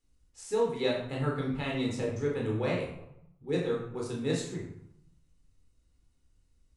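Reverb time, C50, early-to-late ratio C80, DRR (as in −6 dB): 0.85 s, 4.0 dB, 7.0 dB, −2.5 dB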